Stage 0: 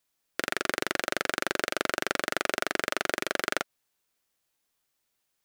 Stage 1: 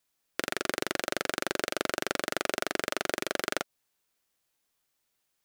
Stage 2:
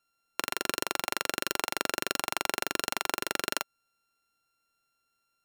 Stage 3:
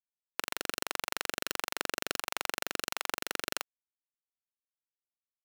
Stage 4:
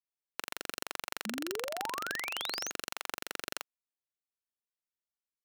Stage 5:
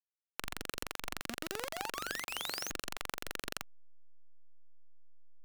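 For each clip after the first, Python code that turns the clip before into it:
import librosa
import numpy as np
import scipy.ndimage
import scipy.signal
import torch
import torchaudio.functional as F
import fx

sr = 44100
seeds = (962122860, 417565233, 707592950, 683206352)

y1 = fx.dynamic_eq(x, sr, hz=1700.0, q=0.85, threshold_db=-41.0, ratio=4.0, max_db=-4)
y2 = np.r_[np.sort(y1[:len(y1) // 32 * 32].reshape(-1, 32), axis=1).ravel(), y1[len(y1) // 32 * 32:]]
y3 = np.sign(y2) * np.maximum(np.abs(y2) - 10.0 ** (-32.5 / 20.0), 0.0)
y3 = y3 * 10.0 ** (-2.5 / 20.0)
y4 = fx.spec_paint(y3, sr, seeds[0], shape='rise', start_s=1.25, length_s=1.46, low_hz=200.0, high_hz=6800.0, level_db=-35.0)
y4 = y4 * 10.0 ** (-4.5 / 20.0)
y5 = fx.delta_hold(y4, sr, step_db=-35.5)
y5 = y5 * 10.0 ** (-2.0 / 20.0)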